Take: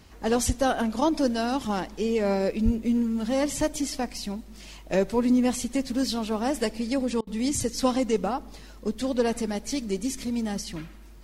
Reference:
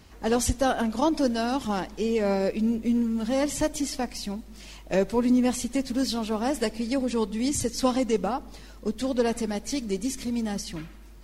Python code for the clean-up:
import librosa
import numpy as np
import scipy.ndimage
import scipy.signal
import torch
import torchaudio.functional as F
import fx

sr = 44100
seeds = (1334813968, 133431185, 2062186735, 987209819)

y = fx.highpass(x, sr, hz=140.0, slope=24, at=(2.64, 2.76), fade=0.02)
y = fx.fix_interpolate(y, sr, at_s=(7.21,), length_ms=59.0)